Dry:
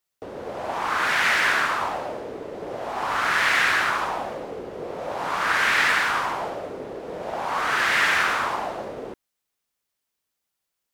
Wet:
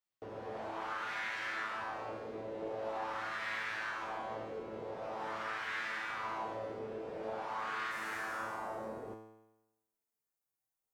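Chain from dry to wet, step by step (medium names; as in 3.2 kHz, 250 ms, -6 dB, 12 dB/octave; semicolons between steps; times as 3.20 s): peaking EQ 13 kHz -11.5 dB 1.5 oct, from 7.91 s 3.4 kHz; compression, threshold -29 dBFS, peak gain reduction 11.5 dB; feedback comb 110 Hz, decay 0.99 s, harmonics all, mix 90%; trim +5.5 dB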